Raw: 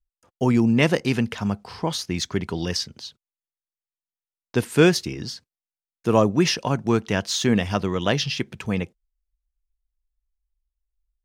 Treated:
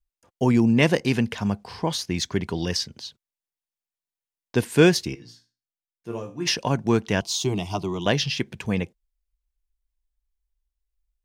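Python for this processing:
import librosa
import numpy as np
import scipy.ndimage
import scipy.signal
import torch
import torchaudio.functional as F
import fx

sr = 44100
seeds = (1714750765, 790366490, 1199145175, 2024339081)

y = fx.notch(x, sr, hz=1300.0, q=9.8)
y = fx.resonator_bank(y, sr, root=46, chord='major', decay_s=0.31, at=(5.14, 6.46), fade=0.02)
y = fx.fixed_phaser(y, sr, hz=340.0, stages=8, at=(7.21, 8.06))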